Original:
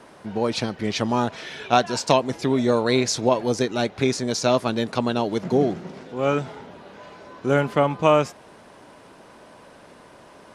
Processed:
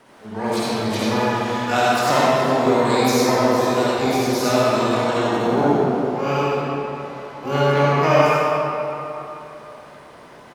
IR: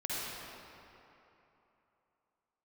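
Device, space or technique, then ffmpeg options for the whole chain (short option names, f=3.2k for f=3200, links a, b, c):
shimmer-style reverb: -filter_complex "[0:a]asplit=2[a][b];[b]adelay=28,volume=-12.5dB[c];[a][c]amix=inputs=2:normalize=0,asplit=2[d][e];[e]asetrate=88200,aresample=44100,atempo=0.5,volume=-6dB[f];[d][f]amix=inputs=2:normalize=0[g];[1:a]atrim=start_sample=2205[h];[g][h]afir=irnorm=-1:irlink=0,volume=-2.5dB"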